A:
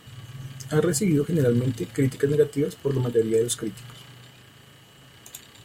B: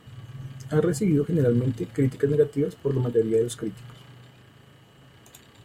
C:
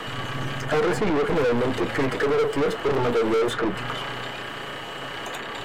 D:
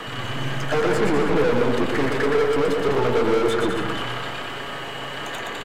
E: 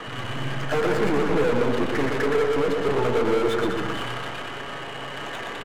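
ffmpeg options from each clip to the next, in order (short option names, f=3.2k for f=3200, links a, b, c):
-af "highshelf=f=2.1k:g=-10"
-filter_complex "[0:a]acrossover=split=370|2600[a][b][c];[a]acompressor=threshold=-27dB:ratio=4[d];[b]acompressor=threshold=-26dB:ratio=4[e];[c]acompressor=threshold=-58dB:ratio=4[f];[d][e][f]amix=inputs=3:normalize=0,asplit=2[g][h];[h]highpass=f=720:p=1,volume=34dB,asoftclip=type=tanh:threshold=-13.5dB[i];[g][i]amix=inputs=2:normalize=0,lowpass=f=2.2k:p=1,volume=-6dB,acrossover=split=330|3500[j][k][l];[j]aeval=exprs='max(val(0),0)':c=same[m];[m][k][l]amix=inputs=3:normalize=0"
-af "aecho=1:1:120|204|262.8|304|332.8:0.631|0.398|0.251|0.158|0.1"
-af "adynamicsmooth=sensitivity=7:basefreq=1.8k,volume=-2dB"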